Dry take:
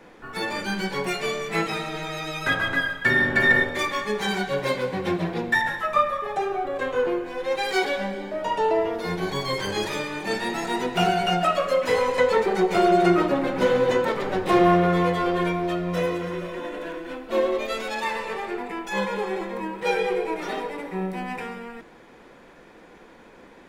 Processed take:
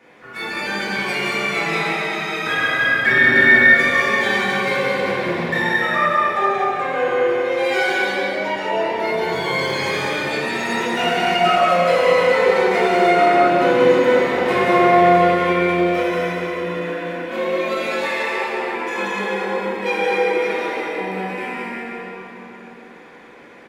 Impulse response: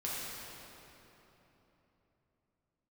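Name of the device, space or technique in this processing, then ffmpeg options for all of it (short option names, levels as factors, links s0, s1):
stadium PA: -filter_complex "[0:a]highpass=f=160:p=1,equalizer=f=2200:t=o:w=0.97:g=6.5,aecho=1:1:183.7|227.4:0.562|0.355[s0];[1:a]atrim=start_sample=2205[s1];[s0][s1]afir=irnorm=-1:irlink=0,volume=0.841"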